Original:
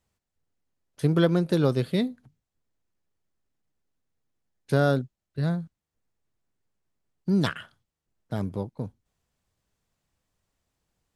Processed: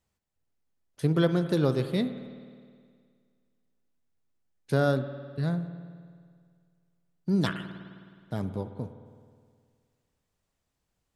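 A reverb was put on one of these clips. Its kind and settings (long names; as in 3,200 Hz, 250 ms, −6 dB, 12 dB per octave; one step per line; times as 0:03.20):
spring reverb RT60 2 s, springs 52 ms, chirp 60 ms, DRR 10 dB
level −2.5 dB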